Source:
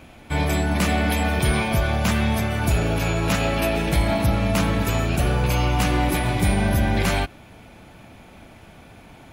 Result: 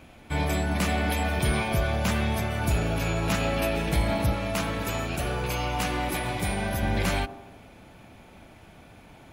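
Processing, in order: 4.33–6.83 low shelf 300 Hz -6.5 dB; band-limited delay 81 ms, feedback 60%, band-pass 490 Hz, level -10.5 dB; gain -4.5 dB

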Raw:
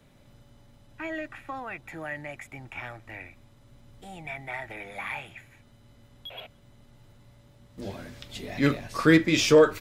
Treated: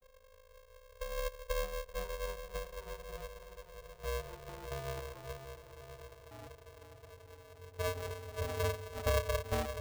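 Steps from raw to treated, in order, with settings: vocoder on a gliding note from B3, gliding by -7 st; compressor 8:1, threshold -38 dBFS, peak gain reduction 24.5 dB; low-pass sweep 160 Hz -> 340 Hz, 0.64–2.34; on a send: diffused feedback echo 0.553 s, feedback 56%, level -9 dB; on the sum: polarity switched at an audio rate 270 Hz; gain +2.5 dB

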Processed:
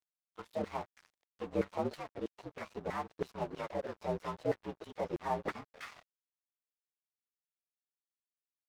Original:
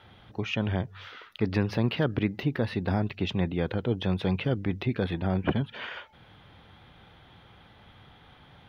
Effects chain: inharmonic rescaling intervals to 117%; 1.93–2.57 compressor 6:1, threshold -31 dBFS, peak gain reduction 8 dB; LFO band-pass saw down 3.1 Hz 450–1700 Hz; crossover distortion -54.5 dBFS; gain +7 dB

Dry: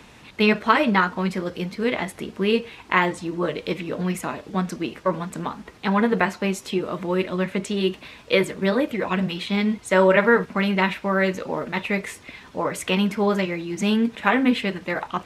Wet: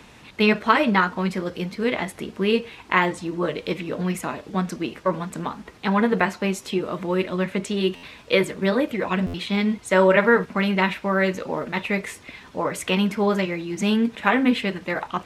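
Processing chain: stuck buffer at 7.95/9.26, samples 512, times 6

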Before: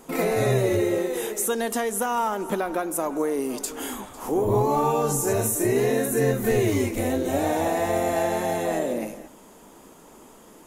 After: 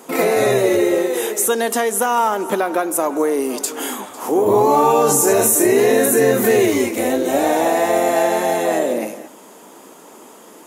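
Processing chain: HPF 260 Hz 12 dB/oct; 4.46–6.66 fast leveller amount 50%; gain +8 dB

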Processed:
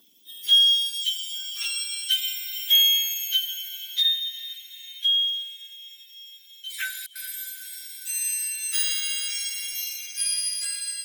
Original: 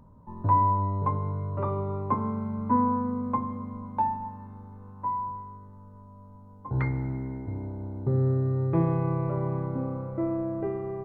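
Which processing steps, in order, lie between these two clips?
spectrum mirrored in octaves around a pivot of 1800 Hz; 0.94–1.35 brick-wall FIR band-stop 290–1700 Hz; 7.06–8.01 dispersion highs, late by 96 ms, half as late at 310 Hz; diffused feedback echo 0.451 s, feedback 55%, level -16 dB; high-pass sweep 260 Hz -> 1900 Hz, 0.02–2.27; gain +6 dB

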